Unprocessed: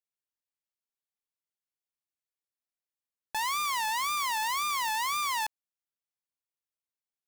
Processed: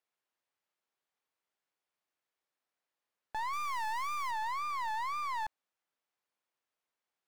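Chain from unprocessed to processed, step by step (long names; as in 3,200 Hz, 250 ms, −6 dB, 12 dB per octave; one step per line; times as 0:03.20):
0:03.53–0:04.31: high-shelf EQ 4,200 Hz +11 dB
mid-hump overdrive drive 25 dB, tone 1,100 Hz, clips at −25 dBFS
level −4 dB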